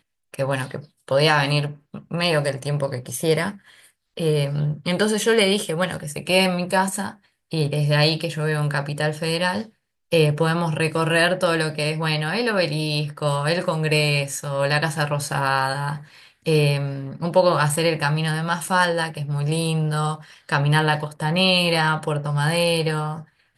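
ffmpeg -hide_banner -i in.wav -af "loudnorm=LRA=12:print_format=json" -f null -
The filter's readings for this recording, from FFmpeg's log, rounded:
"input_i" : "-21.4",
"input_tp" : "-4.2",
"input_lra" : "2.2",
"input_thresh" : "-31.7",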